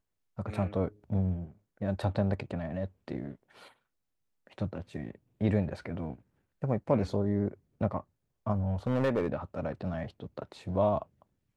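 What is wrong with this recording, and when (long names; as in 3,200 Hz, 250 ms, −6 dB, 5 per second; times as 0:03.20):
0:08.87–0:09.28: clipping −23 dBFS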